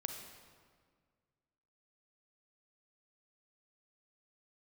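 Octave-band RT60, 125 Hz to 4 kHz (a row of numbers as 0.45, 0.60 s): 2.3, 2.1, 1.9, 1.7, 1.5, 1.3 s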